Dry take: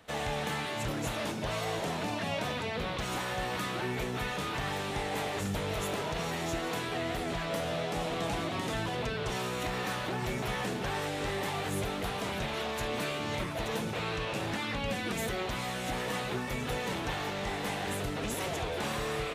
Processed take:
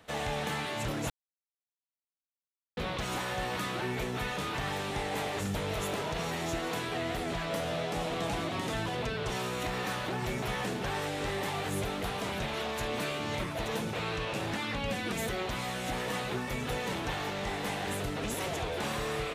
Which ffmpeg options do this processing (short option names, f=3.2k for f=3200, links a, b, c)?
-filter_complex "[0:a]asplit=3[a][b][c];[a]atrim=end=1.1,asetpts=PTS-STARTPTS,afade=t=out:st=1.096:d=0.004:c=hsin[d];[b]atrim=start=1.1:end=2.77,asetpts=PTS-STARTPTS,volume=0[e];[c]atrim=start=2.77,asetpts=PTS-STARTPTS,afade=t=in:d=0.004:c=hsin[f];[d][e][f]concat=n=3:v=0:a=1"